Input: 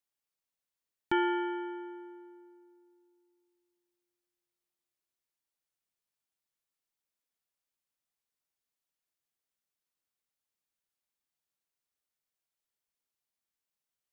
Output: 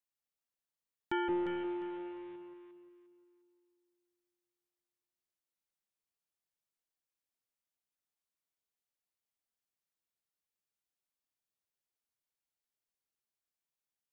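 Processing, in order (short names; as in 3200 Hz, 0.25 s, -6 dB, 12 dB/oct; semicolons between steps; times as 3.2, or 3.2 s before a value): 1.28–2.36 delta modulation 16 kbps, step -43 dBFS; echo with dull and thin repeats by turns 0.176 s, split 870 Hz, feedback 54%, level -2 dB; gain -6 dB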